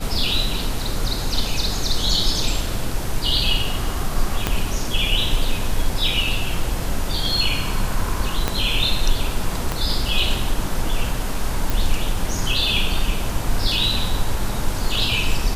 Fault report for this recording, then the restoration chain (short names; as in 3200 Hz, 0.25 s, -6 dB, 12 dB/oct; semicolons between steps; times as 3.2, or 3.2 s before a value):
4.47 pop -4 dBFS
8.48 pop -5 dBFS
9.72 pop -8 dBFS
11.7 pop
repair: de-click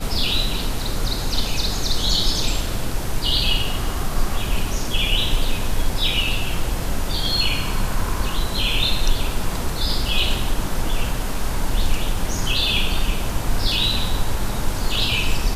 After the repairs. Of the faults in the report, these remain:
4.47 pop
8.48 pop
9.72 pop